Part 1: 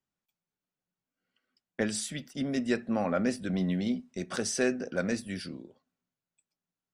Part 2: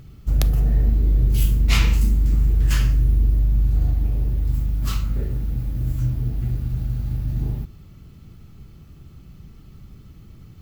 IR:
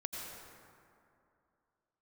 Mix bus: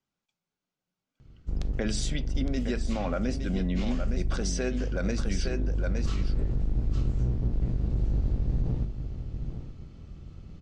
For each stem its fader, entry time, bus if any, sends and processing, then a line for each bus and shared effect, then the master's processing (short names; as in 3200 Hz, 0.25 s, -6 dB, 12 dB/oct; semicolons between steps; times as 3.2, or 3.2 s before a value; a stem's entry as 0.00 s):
+2.5 dB, 0.00 s, no send, echo send -9.5 dB, notch 1800 Hz, Q 11
-8.0 dB, 1.20 s, no send, echo send -10.5 dB, octaver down 1 oct, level +1 dB; auto duck -9 dB, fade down 1.85 s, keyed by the first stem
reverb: off
echo: echo 0.863 s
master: LPF 7000 Hz 24 dB/oct; vocal rider within 4 dB 0.5 s; limiter -19 dBFS, peak gain reduction 8 dB